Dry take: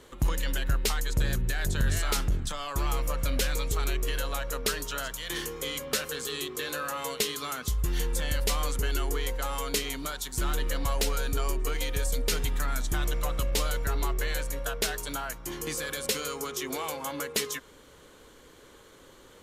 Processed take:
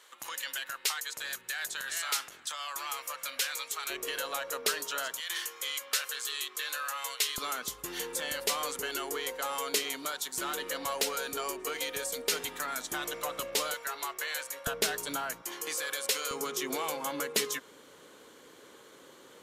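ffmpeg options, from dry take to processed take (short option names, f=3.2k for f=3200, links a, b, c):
-af "asetnsamples=n=441:p=0,asendcmd='3.9 highpass f 430;5.2 highpass f 1100;7.38 highpass f 370;13.74 highpass f 790;14.67 highpass f 190;15.42 highpass f 570;16.31 highpass f 200',highpass=1.1k"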